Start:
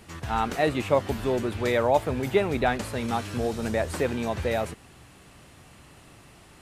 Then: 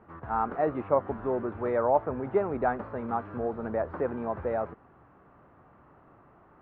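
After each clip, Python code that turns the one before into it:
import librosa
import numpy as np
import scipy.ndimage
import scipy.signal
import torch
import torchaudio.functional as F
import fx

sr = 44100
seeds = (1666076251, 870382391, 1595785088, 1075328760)

y = scipy.signal.sosfilt(scipy.signal.cheby1(3, 1.0, 1300.0, 'lowpass', fs=sr, output='sos'), x)
y = fx.low_shelf(y, sr, hz=210.0, db=-11.5)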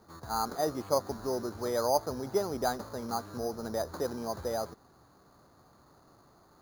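y = np.repeat(x[::8], 8)[:len(x)]
y = y * 10.0 ** (-3.5 / 20.0)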